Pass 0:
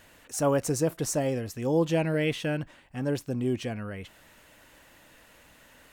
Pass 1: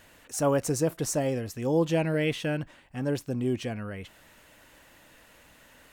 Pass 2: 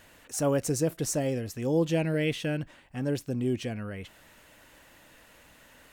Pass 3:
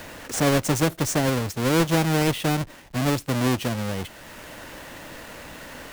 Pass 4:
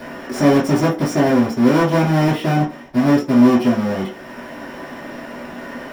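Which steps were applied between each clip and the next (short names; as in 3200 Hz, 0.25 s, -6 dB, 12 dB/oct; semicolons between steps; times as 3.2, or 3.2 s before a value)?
nothing audible
dynamic EQ 1000 Hz, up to -6 dB, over -44 dBFS, Q 1.2
half-waves squared off; three-band squash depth 40%; gain +2 dB
in parallel at -4 dB: hard clip -24.5 dBFS, distortion -5 dB; on the sum: reverb RT60 0.40 s, pre-delay 3 ms, DRR -8 dB; gain -13 dB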